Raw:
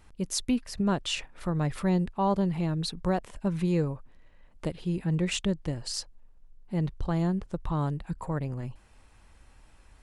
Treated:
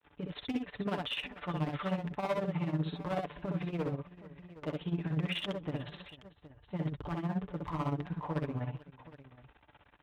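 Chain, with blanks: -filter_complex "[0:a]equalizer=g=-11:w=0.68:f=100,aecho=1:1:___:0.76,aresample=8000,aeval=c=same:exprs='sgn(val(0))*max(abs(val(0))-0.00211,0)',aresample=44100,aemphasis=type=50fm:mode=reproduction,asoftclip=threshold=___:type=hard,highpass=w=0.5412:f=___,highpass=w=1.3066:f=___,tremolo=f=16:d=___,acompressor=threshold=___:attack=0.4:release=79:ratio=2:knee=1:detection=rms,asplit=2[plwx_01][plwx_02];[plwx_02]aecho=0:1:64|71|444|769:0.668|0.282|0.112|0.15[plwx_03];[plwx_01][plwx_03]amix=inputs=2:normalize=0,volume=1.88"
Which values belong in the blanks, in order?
6.8, 0.0447, 54, 54, 0.8, 0.01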